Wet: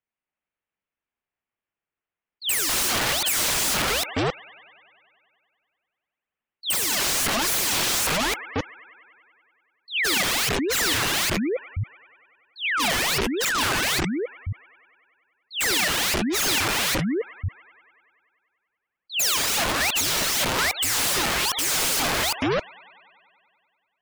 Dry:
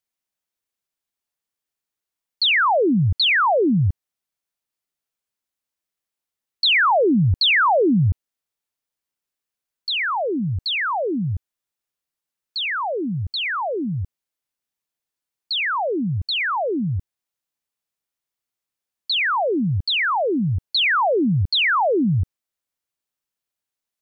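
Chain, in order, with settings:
delay that plays each chunk backwards 269 ms, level −1.5 dB
Butterworth low-pass 2,800 Hz 36 dB per octave
on a send: delay with a high-pass on its return 96 ms, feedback 75%, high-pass 1,600 Hz, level −11 dB
on the sum: dynamic equaliser 810 Hz, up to +3 dB, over −27 dBFS, Q 0.91
wrap-around overflow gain 18.5 dB
gate on every frequency bin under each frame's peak −25 dB strong

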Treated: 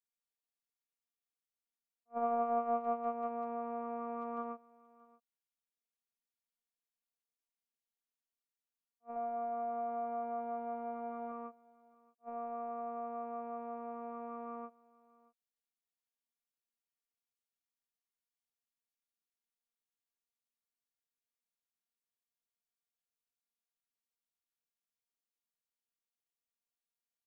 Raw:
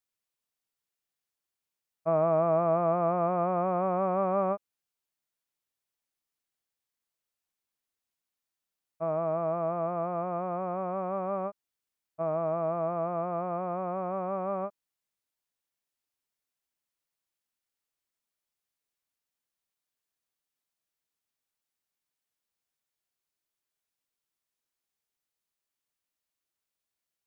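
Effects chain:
noise gate −23 dBFS, range −17 dB
0:09.16–0:11.32: comb filter 1.4 ms, depth 90%
downward compressor 2 to 1, threshold −42 dBFS, peak gain reduction 9.5 dB
phases set to zero 234 Hz
single-tap delay 627 ms −23 dB
level that may rise only so fast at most 470 dB per second
level +8.5 dB

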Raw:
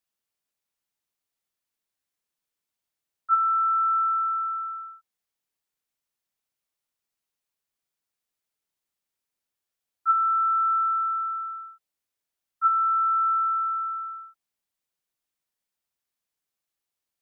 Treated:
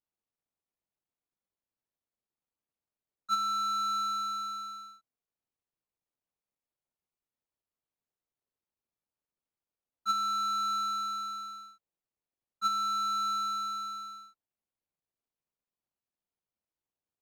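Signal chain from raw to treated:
running median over 25 samples
level −2 dB

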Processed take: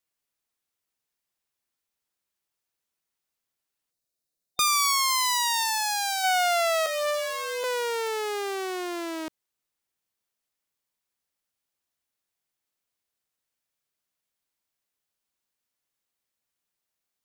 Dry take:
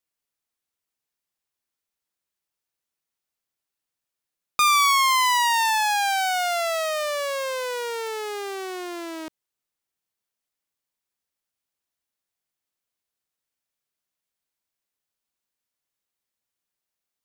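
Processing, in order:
0:03.91–0:06.24: gain on a spectral selection 750–3,600 Hz −8 dB
0:06.86–0:07.64: phases set to zero 98.6 Hz
level +1 dB

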